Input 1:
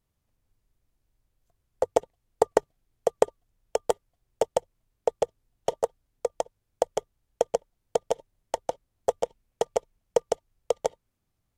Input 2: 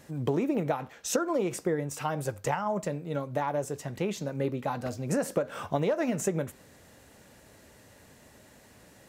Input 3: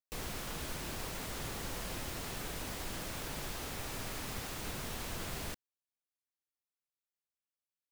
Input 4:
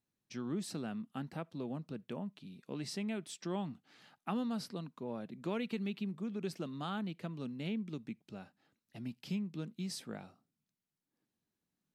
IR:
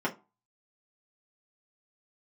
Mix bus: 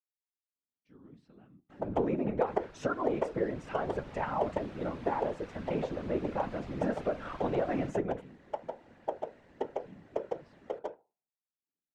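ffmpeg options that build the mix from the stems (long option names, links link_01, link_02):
-filter_complex "[0:a]bandreject=frequency=60:width_type=h:width=6,bandreject=frequency=120:width_type=h:width=6,bandreject=frequency=180:width_type=h:width=6,bandreject=frequency=240:width_type=h:width=6,bandreject=frequency=300:width_type=h:width=6,bandreject=frequency=360:width_type=h:width=6,bandreject=frequency=420:width_type=h:width=6,bandreject=frequency=480:width_type=h:width=6,bandreject=frequency=540:width_type=h:width=6,aeval=exprs='sgn(val(0))*max(abs(val(0))-0.00531,0)':channel_layout=same,volume=-7.5dB,asplit=2[link_01][link_02];[link_02]volume=-9.5dB[link_03];[1:a]adelay=1700,volume=1dB,asplit=2[link_04][link_05];[link_05]volume=-18.5dB[link_06];[2:a]dynaudnorm=framelen=220:gausssize=13:maxgain=7dB,adelay=2350,volume=-7.5dB[link_07];[3:a]adelay=550,volume=-14.5dB,asplit=2[link_08][link_09];[link_09]volume=-13.5dB[link_10];[4:a]atrim=start_sample=2205[link_11];[link_03][link_06][link_10]amix=inputs=3:normalize=0[link_12];[link_12][link_11]afir=irnorm=-1:irlink=0[link_13];[link_01][link_04][link_07][link_08][link_13]amix=inputs=5:normalize=0,lowpass=2600,afftfilt=real='hypot(re,im)*cos(2*PI*random(0))':imag='hypot(re,im)*sin(2*PI*random(1))':win_size=512:overlap=0.75"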